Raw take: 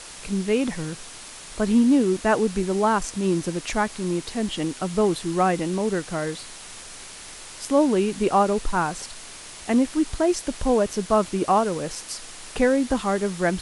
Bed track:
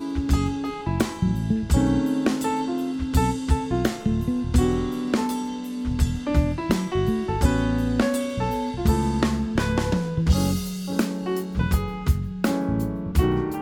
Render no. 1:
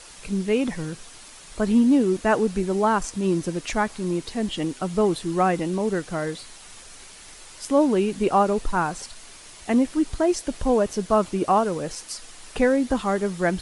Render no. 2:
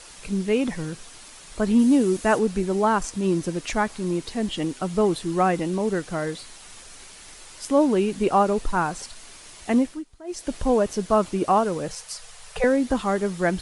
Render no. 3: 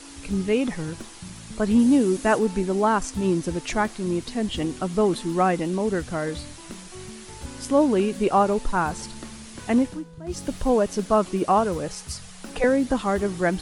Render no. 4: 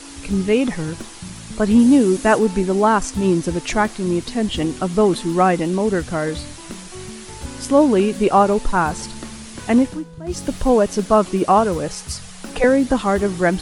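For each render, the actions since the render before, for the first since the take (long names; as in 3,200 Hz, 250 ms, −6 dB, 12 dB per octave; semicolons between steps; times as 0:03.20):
broadband denoise 6 dB, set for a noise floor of −41 dBFS
0:01.79–0:02.39: high-shelf EQ 7,200 Hz +10 dB; 0:09.78–0:10.51: duck −21.5 dB, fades 0.27 s; 0:11.88–0:12.64: Chebyshev band-stop filter 180–430 Hz, order 4
mix in bed track −18 dB
level +5.5 dB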